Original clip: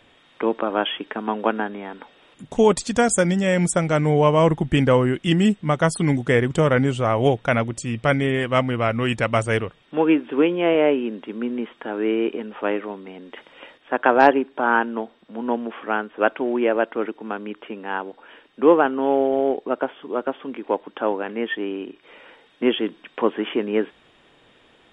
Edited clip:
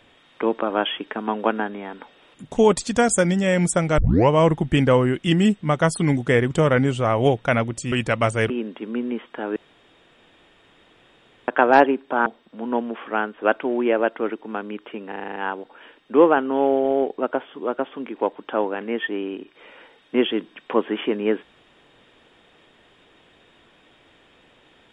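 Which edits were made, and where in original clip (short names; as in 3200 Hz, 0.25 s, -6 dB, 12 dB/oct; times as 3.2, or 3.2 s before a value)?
3.98 tape start 0.31 s
7.92–9.04 cut
9.62–10.97 cut
12.03–13.95 room tone
14.73–15.02 cut
17.84 stutter 0.04 s, 8 plays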